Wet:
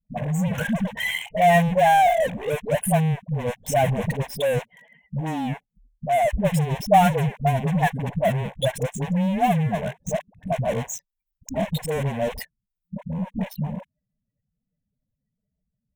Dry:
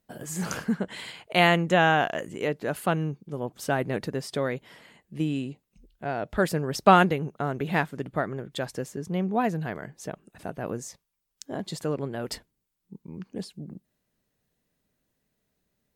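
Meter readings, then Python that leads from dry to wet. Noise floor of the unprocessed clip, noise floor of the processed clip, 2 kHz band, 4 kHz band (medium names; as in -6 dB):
-79 dBFS, -82 dBFS, +0.5 dB, +0.5 dB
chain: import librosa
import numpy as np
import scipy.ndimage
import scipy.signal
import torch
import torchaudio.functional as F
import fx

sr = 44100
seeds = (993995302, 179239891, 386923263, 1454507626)

p1 = fx.spec_expand(x, sr, power=2.9)
p2 = fx.fuzz(p1, sr, gain_db=40.0, gate_db=-44.0)
p3 = p1 + (p2 * 10.0 ** (-6.5 / 20.0))
p4 = fx.fixed_phaser(p3, sr, hz=1300.0, stages=6)
y = fx.dispersion(p4, sr, late='highs', ms=71.0, hz=430.0)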